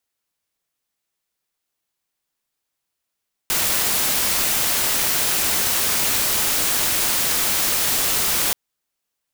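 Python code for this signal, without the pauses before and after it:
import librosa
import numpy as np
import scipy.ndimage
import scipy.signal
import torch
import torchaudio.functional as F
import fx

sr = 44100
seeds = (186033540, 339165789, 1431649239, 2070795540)

y = fx.noise_colour(sr, seeds[0], length_s=5.03, colour='white', level_db=-20.0)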